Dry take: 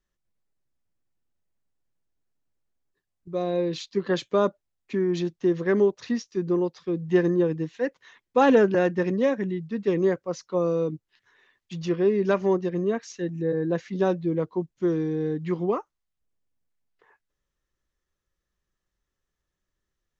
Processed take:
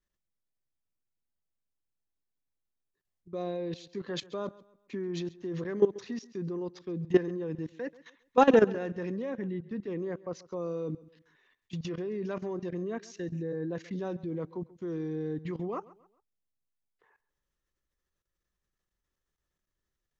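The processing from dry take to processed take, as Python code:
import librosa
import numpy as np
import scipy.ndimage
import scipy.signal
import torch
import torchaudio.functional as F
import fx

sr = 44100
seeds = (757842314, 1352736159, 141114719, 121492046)

y = fx.lowpass(x, sr, hz=3200.0, slope=6, at=(9.22, 10.56))
y = fx.level_steps(y, sr, step_db=17)
y = fx.echo_feedback(y, sr, ms=135, feedback_pct=36, wet_db=-20.0)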